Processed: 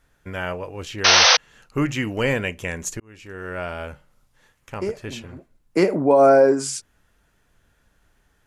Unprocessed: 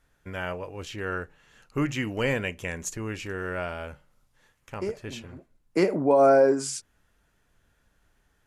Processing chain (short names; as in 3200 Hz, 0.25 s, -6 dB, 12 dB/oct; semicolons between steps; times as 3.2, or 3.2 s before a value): 1.04–1.37 painted sound noise 440–6300 Hz -18 dBFS; 3–3.8 fade in; 4.76–5.21 mismatched tape noise reduction encoder only; gain +4.5 dB